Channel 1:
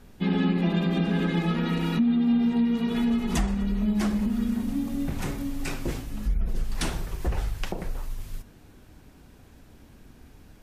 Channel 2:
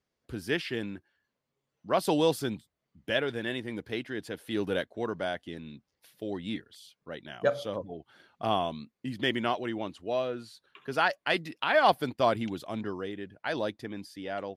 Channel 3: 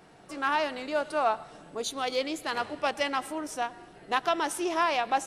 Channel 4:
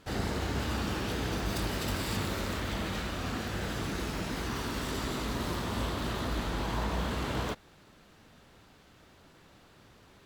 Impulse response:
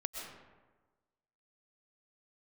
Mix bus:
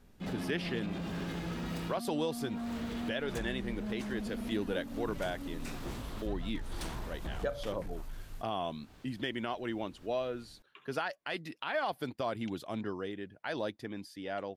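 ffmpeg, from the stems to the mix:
-filter_complex "[0:a]asoftclip=type=hard:threshold=0.0501,volume=0.316[s0];[1:a]volume=0.75,asplit=2[s1][s2];[2:a]acompressor=threshold=0.0158:ratio=6,adelay=2150,volume=0.119[s3];[3:a]acompressor=threshold=0.01:ratio=6,adelay=200,volume=0.794[s4];[s2]apad=whole_len=461148[s5];[s4][s5]sidechaincompress=threshold=0.00501:ratio=8:attack=8.9:release=182[s6];[s0][s1][s3][s6]amix=inputs=4:normalize=0,alimiter=limit=0.0668:level=0:latency=1:release=192"

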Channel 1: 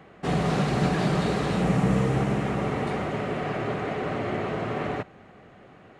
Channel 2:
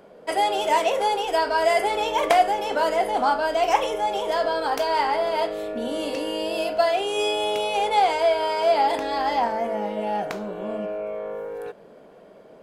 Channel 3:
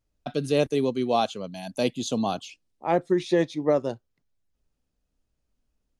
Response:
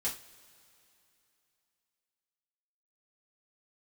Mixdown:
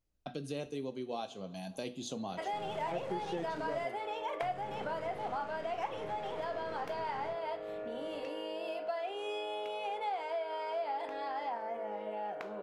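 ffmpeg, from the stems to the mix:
-filter_complex "[0:a]alimiter=limit=0.0668:level=0:latency=1:release=28,aeval=exprs='(tanh(70.8*val(0)+0.6)-tanh(0.6))/70.8':c=same,flanger=delay=22.5:depth=7.5:speed=0.45,adelay=2300,volume=1.41,asplit=3[s0][s1][s2];[s0]atrim=end=3.85,asetpts=PTS-STARTPTS,afade=t=out:st=3.846:d=0.004:c=hsin[s3];[s1]atrim=start=3.85:end=4.42,asetpts=PTS-STARTPTS,volume=0[s4];[s2]atrim=start=4.42,asetpts=PTS-STARTPTS,afade=t=in:d=0.004:c=hsin[s5];[s3][s4][s5]concat=n=3:v=0:a=1[s6];[1:a]bass=f=250:g=-12,treble=f=4000:g=-13,adelay=2100,volume=0.596[s7];[2:a]volume=0.398,asplit=2[s8][s9];[s9]volume=0.376[s10];[3:a]atrim=start_sample=2205[s11];[s10][s11]afir=irnorm=-1:irlink=0[s12];[s6][s7][s8][s12]amix=inputs=4:normalize=0,acompressor=threshold=0.01:ratio=2.5"

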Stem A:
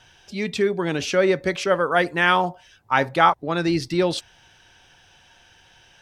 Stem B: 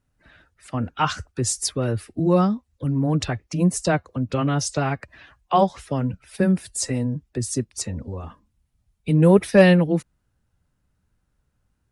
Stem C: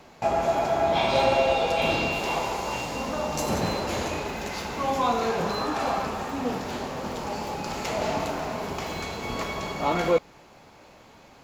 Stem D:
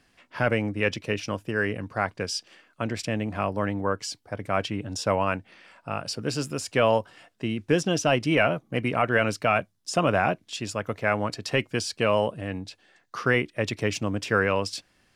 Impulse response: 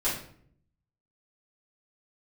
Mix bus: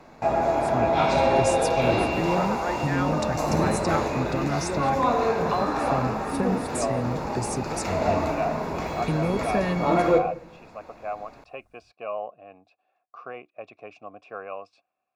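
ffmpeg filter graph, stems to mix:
-filter_complex "[0:a]adelay=700,volume=0.266[s0];[1:a]highshelf=f=3400:g=10,acompressor=threshold=0.0447:ratio=4,volume=1.19[s1];[2:a]volume=0.944,asplit=2[s2][s3];[s3]volume=0.282[s4];[3:a]dynaudnorm=f=160:g=7:m=1.78,asplit=3[s5][s6][s7];[s5]bandpass=f=730:t=q:w=8,volume=1[s8];[s6]bandpass=f=1090:t=q:w=8,volume=0.501[s9];[s7]bandpass=f=2440:t=q:w=8,volume=0.355[s10];[s8][s9][s10]amix=inputs=3:normalize=0,volume=0.668[s11];[4:a]atrim=start_sample=2205[s12];[s4][s12]afir=irnorm=-1:irlink=0[s13];[s0][s1][s2][s11][s13]amix=inputs=5:normalize=0,highshelf=f=3300:g=-9.5,bandreject=f=3100:w=5.5"

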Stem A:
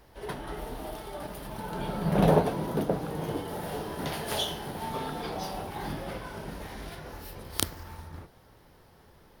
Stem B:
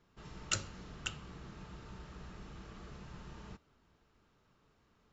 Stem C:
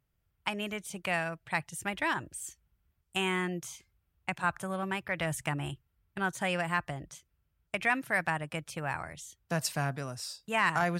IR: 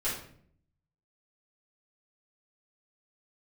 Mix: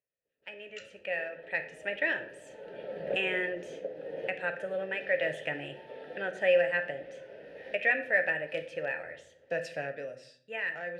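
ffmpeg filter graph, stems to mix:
-filter_complex "[0:a]highshelf=f=7100:g=-8.5,acompressor=threshold=0.0158:ratio=2,adelay=950,volume=1.26,asplit=3[s0][s1][s2];[s1]volume=0.0891[s3];[s2]volume=0.0794[s4];[1:a]acrossover=split=1100[s5][s6];[s5]aeval=exprs='val(0)*(1-1/2+1/2*cos(2*PI*6.7*n/s))':c=same[s7];[s6]aeval=exprs='val(0)*(1-1/2-1/2*cos(2*PI*6.7*n/s))':c=same[s8];[s7][s8]amix=inputs=2:normalize=0,adelay=250,volume=1,asplit=3[s9][s10][s11];[s9]atrim=end=1.02,asetpts=PTS-STARTPTS,afade=t=out:st=1.016:d=0.004:c=hsin[s12];[s10]atrim=start=1.02:end=3.04,asetpts=PTS-STARTPTS,volume=0[s13];[s11]atrim=start=3.04,asetpts=PTS-STARTPTS,afade=t=in:d=0.004:c=hsin[s14];[s12][s13][s14]concat=n=3:v=0:a=1,asplit=2[s15][s16];[s16]volume=0.447[s17];[2:a]highshelf=f=10000:g=-8,volume=1,asplit=3[s18][s19][s20];[s19]volume=0.266[s21];[s20]apad=whole_len=456478[s22];[s0][s22]sidechaincompress=threshold=0.00562:ratio=8:attack=16:release=819[s23];[3:a]atrim=start_sample=2205[s24];[s3][s17][s21]amix=inputs=3:normalize=0[s25];[s25][s24]afir=irnorm=-1:irlink=0[s26];[s4]aecho=0:1:302:1[s27];[s23][s15][s18][s26][s27]amix=inputs=5:normalize=0,dynaudnorm=f=400:g=7:m=4.47,asplit=3[s28][s29][s30];[s28]bandpass=f=530:t=q:w=8,volume=1[s31];[s29]bandpass=f=1840:t=q:w=8,volume=0.501[s32];[s30]bandpass=f=2480:t=q:w=8,volume=0.355[s33];[s31][s32][s33]amix=inputs=3:normalize=0"

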